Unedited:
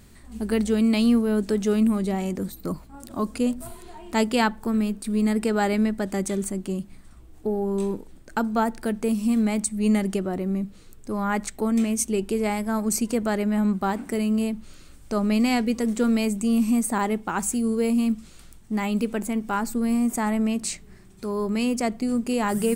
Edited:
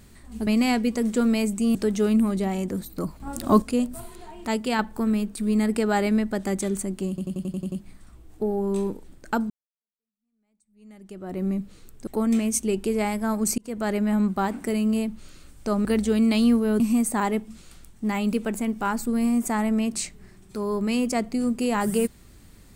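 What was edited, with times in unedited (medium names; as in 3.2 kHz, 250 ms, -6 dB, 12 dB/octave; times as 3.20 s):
0.47–1.42 s: swap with 15.30–16.58 s
2.87–3.29 s: gain +9 dB
4.14–4.46 s: gain -4 dB
6.76 s: stutter 0.09 s, 8 plays
8.54–10.45 s: fade in exponential
11.11–11.52 s: delete
13.03–13.37 s: fade in
17.26–18.16 s: delete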